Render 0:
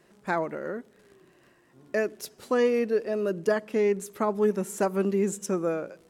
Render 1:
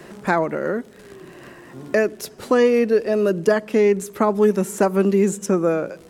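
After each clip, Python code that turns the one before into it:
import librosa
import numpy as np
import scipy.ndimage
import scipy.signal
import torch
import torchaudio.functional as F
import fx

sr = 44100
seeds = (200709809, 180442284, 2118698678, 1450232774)

y = fx.low_shelf(x, sr, hz=140.0, db=4.0)
y = fx.band_squash(y, sr, depth_pct=40)
y = F.gain(torch.from_numpy(y), 7.5).numpy()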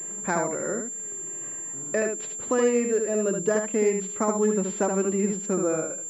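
y = x + 10.0 ** (-5.0 / 20.0) * np.pad(x, (int(75 * sr / 1000.0), 0))[:len(x)]
y = fx.pwm(y, sr, carrier_hz=7300.0)
y = F.gain(torch.from_numpy(y), -7.5).numpy()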